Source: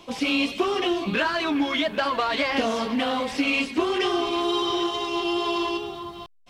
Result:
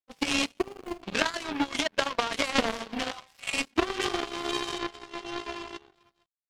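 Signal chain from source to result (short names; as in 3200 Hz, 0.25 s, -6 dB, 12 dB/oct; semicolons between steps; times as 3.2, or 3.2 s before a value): 0.59–1.03 median filter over 41 samples; 3.11–3.54 inverse Chebyshev band-stop 220–440 Hz, stop band 40 dB; 4.78–5.95 high shelf 3600 Hz -9 dB; power-law curve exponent 3; gain +8 dB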